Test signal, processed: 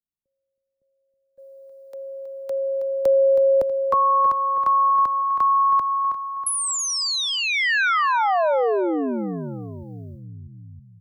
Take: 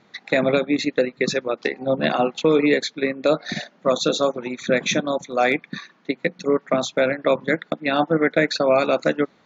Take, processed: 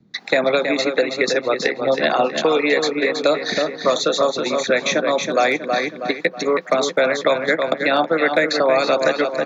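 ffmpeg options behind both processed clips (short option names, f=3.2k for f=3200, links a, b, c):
-filter_complex "[0:a]bass=f=250:g=0,treble=f=4k:g=-4,asplit=2[a][b];[b]adelay=321,lowpass=f=4k:p=1,volume=-8dB,asplit=2[c][d];[d]adelay=321,lowpass=f=4k:p=1,volume=0.45,asplit=2[e][f];[f]adelay=321,lowpass=f=4k:p=1,volume=0.45,asplit=2[g][h];[h]adelay=321,lowpass=f=4k:p=1,volume=0.45,asplit=2[i][j];[j]adelay=321,lowpass=f=4k:p=1,volume=0.45[k];[a][c][e][g][i][k]amix=inputs=6:normalize=0,acrossover=split=300[l][m];[l]acompressor=threshold=-39dB:ratio=6[n];[m]agate=range=-24dB:threshold=-55dB:ratio=16:detection=peak[o];[n][o]amix=inputs=2:normalize=0,aexciter=amount=3.4:drive=2.6:freq=4k,acrossover=split=170|560|2200[p][q][r][s];[p]acompressor=threshold=-45dB:ratio=4[t];[q]acompressor=threshold=-29dB:ratio=4[u];[r]acompressor=threshold=-24dB:ratio=4[v];[s]acompressor=threshold=-33dB:ratio=4[w];[t][u][v][w]amix=inputs=4:normalize=0,volume=7dB"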